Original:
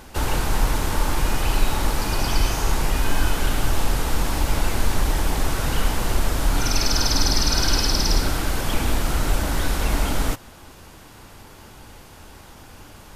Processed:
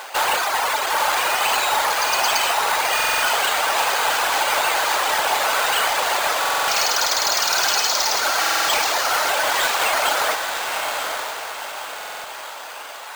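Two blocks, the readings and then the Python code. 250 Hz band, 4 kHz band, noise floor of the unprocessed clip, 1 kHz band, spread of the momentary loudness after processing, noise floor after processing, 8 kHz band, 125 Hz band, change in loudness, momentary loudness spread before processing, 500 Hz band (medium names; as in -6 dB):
-13.5 dB, +6.0 dB, -45 dBFS, +10.0 dB, 12 LU, -34 dBFS, +5.0 dB, under -25 dB, +4.5 dB, 5 LU, +5.0 dB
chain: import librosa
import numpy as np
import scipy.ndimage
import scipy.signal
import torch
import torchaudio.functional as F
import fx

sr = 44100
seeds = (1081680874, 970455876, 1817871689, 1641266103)

p1 = scipy.signal.sosfilt(scipy.signal.butter(4, 600.0, 'highpass', fs=sr, output='sos'), x)
p2 = fx.dereverb_blind(p1, sr, rt60_s=1.9)
p3 = fx.rider(p2, sr, range_db=10, speed_s=0.5)
p4 = p2 + (p3 * 10.0 ** (1.0 / 20.0))
p5 = 10.0 ** (-20.0 / 20.0) * np.tanh(p4 / 10.0 ** (-20.0 / 20.0))
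p6 = p5 + fx.echo_diffused(p5, sr, ms=902, feedback_pct=43, wet_db=-4.5, dry=0)
p7 = np.repeat(scipy.signal.resample_poly(p6, 1, 4), 4)[:len(p6)]
p8 = fx.buffer_glitch(p7, sr, at_s=(2.95, 6.4, 8.4, 11.96), block=2048, repeats=5)
y = p8 * 10.0 ** (7.0 / 20.0)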